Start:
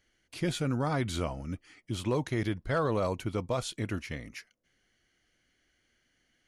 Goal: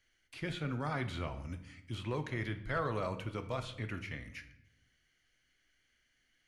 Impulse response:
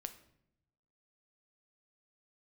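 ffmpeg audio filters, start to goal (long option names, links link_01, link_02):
-filter_complex "[0:a]equalizer=frequency=400:width=0.32:gain=-6.5,acrossover=split=230|2500[link_01][link_02][link_03];[link_02]crystalizer=i=5.5:c=0[link_04];[link_03]acompressor=threshold=-55dB:ratio=10[link_05];[link_01][link_04][link_05]amix=inputs=3:normalize=0[link_06];[1:a]atrim=start_sample=2205,asetrate=39249,aresample=44100[link_07];[link_06][link_07]afir=irnorm=-1:irlink=0"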